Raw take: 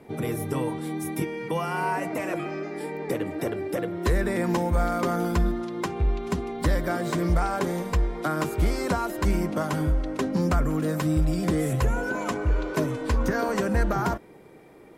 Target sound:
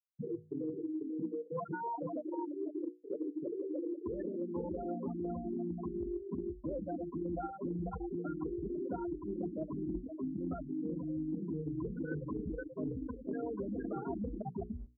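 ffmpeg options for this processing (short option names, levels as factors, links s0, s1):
-filter_complex "[0:a]asplit=2[s0][s1];[s1]adelay=494,lowpass=f=3700:p=1,volume=0.631,asplit=2[s2][s3];[s3]adelay=494,lowpass=f=3700:p=1,volume=0.5,asplit=2[s4][s5];[s5]adelay=494,lowpass=f=3700:p=1,volume=0.5,asplit=2[s6][s7];[s7]adelay=494,lowpass=f=3700:p=1,volume=0.5,asplit=2[s8][s9];[s9]adelay=494,lowpass=f=3700:p=1,volume=0.5,asplit=2[s10][s11];[s11]adelay=494,lowpass=f=3700:p=1,volume=0.5[s12];[s2][s4][s6][s8][s10][s12]amix=inputs=6:normalize=0[s13];[s0][s13]amix=inputs=2:normalize=0,afftfilt=real='re*gte(hypot(re,im),0.251)':imag='im*gte(hypot(re,im),0.251)':win_size=1024:overlap=0.75,highpass=f=230:p=1,equalizer=f=290:t=o:w=1.9:g=14,bandreject=f=60:t=h:w=6,bandreject=f=120:t=h:w=6,bandreject=f=180:t=h:w=6,bandreject=f=240:t=h:w=6,bandreject=f=300:t=h:w=6,bandreject=f=360:t=h:w=6,bandreject=f=420:t=h:w=6,bandreject=f=480:t=h:w=6,areverse,acompressor=threshold=0.0141:ratio=10,areverse,volume=1.12"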